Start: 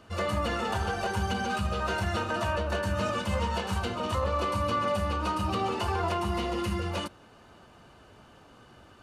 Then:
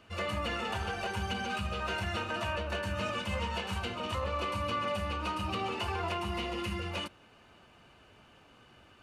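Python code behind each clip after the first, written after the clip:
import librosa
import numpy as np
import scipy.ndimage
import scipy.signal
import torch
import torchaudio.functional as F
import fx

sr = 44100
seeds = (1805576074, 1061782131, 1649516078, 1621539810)

y = fx.peak_eq(x, sr, hz=2500.0, db=8.5, octaves=0.8)
y = y * librosa.db_to_amplitude(-6.0)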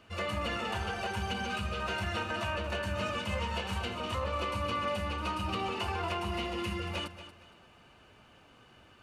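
y = fx.echo_feedback(x, sr, ms=232, feedback_pct=29, wet_db=-12.5)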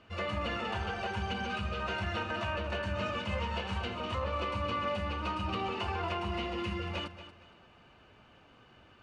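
y = fx.air_absorb(x, sr, metres=98.0)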